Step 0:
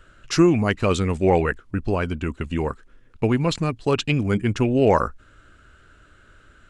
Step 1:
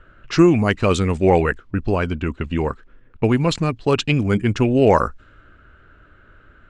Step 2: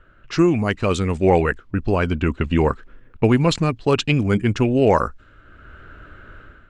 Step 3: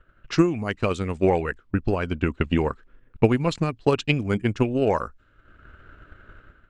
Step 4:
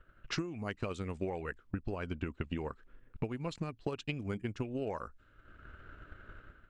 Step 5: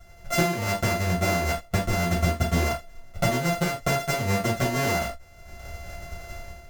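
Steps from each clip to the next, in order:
level-controlled noise filter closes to 2.1 kHz, open at -15 dBFS; trim +3 dB
level rider gain up to 11.5 dB; trim -3.5 dB
transient shaper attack +8 dB, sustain -3 dB; trim -7.5 dB
compression 12:1, threshold -29 dBFS, peak gain reduction 18.5 dB; trim -4 dB
sorted samples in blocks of 64 samples; gated-style reverb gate 110 ms falling, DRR -7 dB; trim +6 dB

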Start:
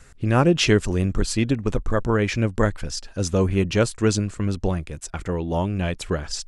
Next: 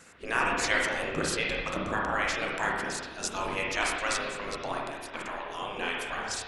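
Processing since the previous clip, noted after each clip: spectral gate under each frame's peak -15 dB weak; spring tank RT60 1.3 s, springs 31/47/57 ms, chirp 80 ms, DRR -2.5 dB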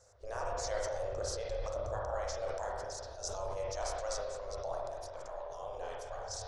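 FFT filter 110 Hz 0 dB, 160 Hz -26 dB, 300 Hz -25 dB, 570 Hz +1 dB, 800 Hz -8 dB, 2.6 kHz -29 dB, 5.8 kHz -4 dB, 8.9 kHz -17 dB, 13 kHz -21 dB; decay stretcher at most 25 dB/s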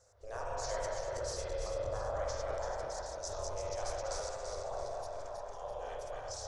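backward echo that repeats 168 ms, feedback 65%, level -3 dB; trim -3 dB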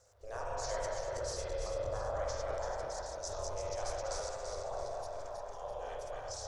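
crackle 120 per s -63 dBFS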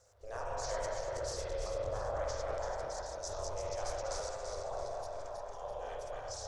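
loudspeaker Doppler distortion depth 0.23 ms

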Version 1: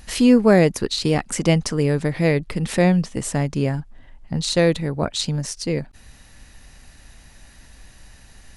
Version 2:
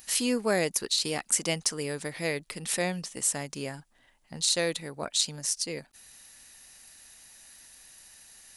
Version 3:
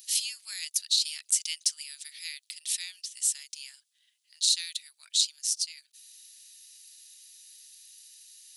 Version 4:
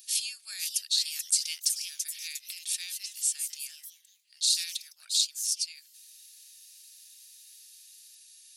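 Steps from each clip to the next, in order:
RIAA curve recording; trim -9 dB
ladder high-pass 2.8 kHz, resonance 30%; trim +6.5 dB
comb of notches 1 kHz; ever faster or slower copies 517 ms, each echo +2 st, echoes 3, each echo -6 dB

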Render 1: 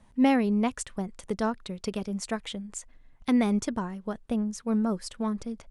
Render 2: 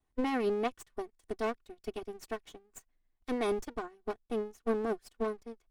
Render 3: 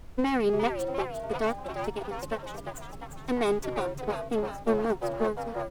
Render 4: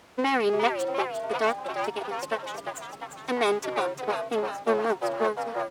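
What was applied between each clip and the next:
comb filter that takes the minimum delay 2.7 ms; peak limiter -23.5 dBFS, peak gain reduction 9.5 dB; upward expansion 2.5:1, over -42 dBFS; trim +1.5 dB
added noise brown -49 dBFS; frequency-shifting echo 350 ms, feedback 58%, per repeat +130 Hz, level -7 dB; trim +5 dB
frequency weighting A; trim +5.5 dB

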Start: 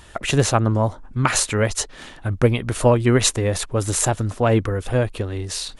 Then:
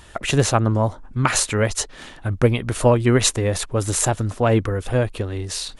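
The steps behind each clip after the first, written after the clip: no audible change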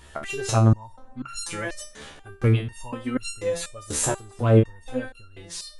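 plate-style reverb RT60 2.1 s, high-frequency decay 0.55×, DRR 18.5 dB; resonator arpeggio 4.1 Hz 73–1400 Hz; trim +5 dB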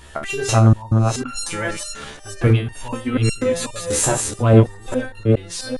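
chunks repeated in reverse 412 ms, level -4.5 dB; in parallel at -6.5 dB: saturation -14.5 dBFS, distortion -12 dB; on the sum: trim +2.5 dB

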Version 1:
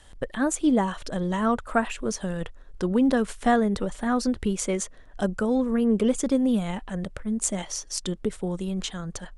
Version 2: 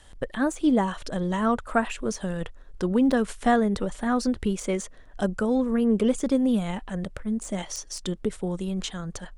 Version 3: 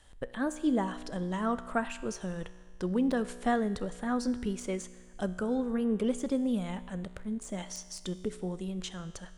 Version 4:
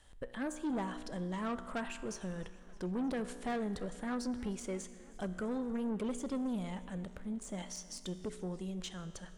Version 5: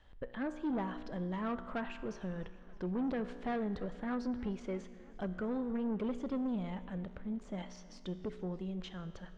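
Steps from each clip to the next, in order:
de-esser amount 60%
feedback comb 61 Hz, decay 1.7 s, harmonics all, mix 60%
saturation -28.5 dBFS, distortion -11 dB; modulated delay 312 ms, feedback 71%, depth 110 cents, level -22 dB; trim -3 dB
distance through air 230 m; trim +1 dB

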